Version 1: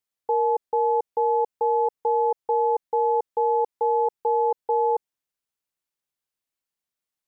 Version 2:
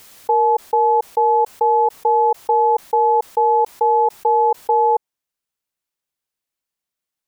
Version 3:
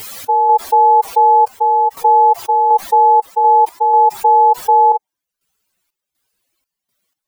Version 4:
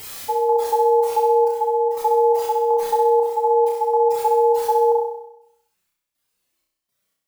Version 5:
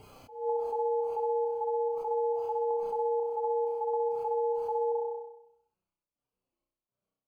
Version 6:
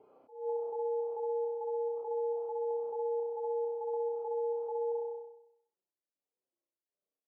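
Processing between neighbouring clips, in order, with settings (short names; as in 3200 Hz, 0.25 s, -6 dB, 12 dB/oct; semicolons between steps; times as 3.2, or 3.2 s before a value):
dynamic EQ 880 Hz, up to +5 dB, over -34 dBFS, Q 1.3; backwards sustainer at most 79 dB/s; gain +3 dB
spectral contrast raised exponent 2.8; step gate "x.xxxx..xx.xx." 61 bpm -12 dB; maximiser +18 dB; gain -3 dB
flutter echo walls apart 5.5 m, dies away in 0.8 s; gain -7 dB
compressor, threshold -22 dBFS, peak gain reduction 9 dB; running mean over 24 samples; attack slew limiter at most 120 dB/s; gain -3.5 dB
ladder band-pass 500 Hz, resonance 30%; gain +5 dB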